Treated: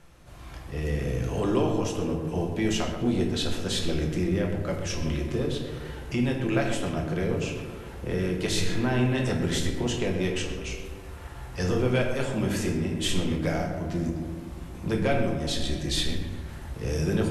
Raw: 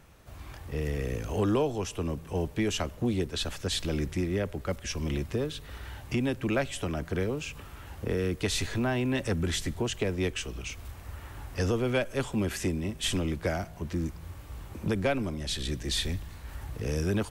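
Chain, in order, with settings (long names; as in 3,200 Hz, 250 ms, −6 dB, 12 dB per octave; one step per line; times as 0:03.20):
elliptic low-pass filter 12,000 Hz, stop band 60 dB
on a send: tape delay 127 ms, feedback 77%, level −7 dB, low-pass 1,900 Hz
on the sum: rectangular room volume 180 cubic metres, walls mixed, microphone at 0.87 metres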